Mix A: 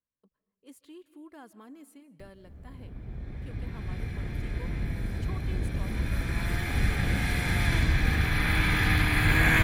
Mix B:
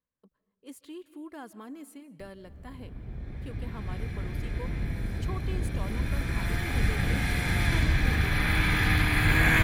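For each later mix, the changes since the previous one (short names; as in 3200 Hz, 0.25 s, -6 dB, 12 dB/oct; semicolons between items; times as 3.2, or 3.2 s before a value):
speech +5.5 dB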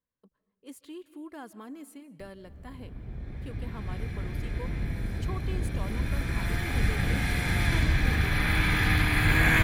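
none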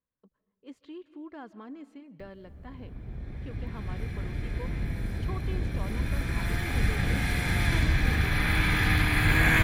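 speech: add air absorption 180 m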